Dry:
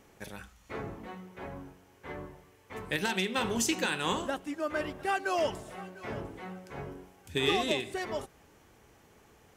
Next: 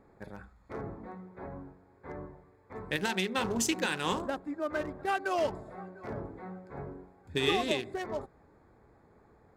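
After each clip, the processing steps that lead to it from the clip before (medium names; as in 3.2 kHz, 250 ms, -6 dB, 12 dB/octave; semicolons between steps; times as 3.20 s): local Wiener filter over 15 samples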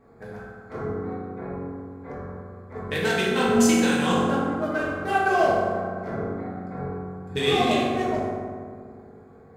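reverberation RT60 2.0 s, pre-delay 3 ms, DRR -8 dB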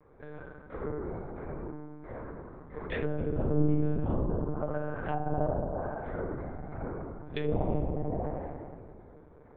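monotone LPC vocoder at 8 kHz 150 Hz; low-pass that closes with the level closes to 520 Hz, closed at -19.5 dBFS; trim -5.5 dB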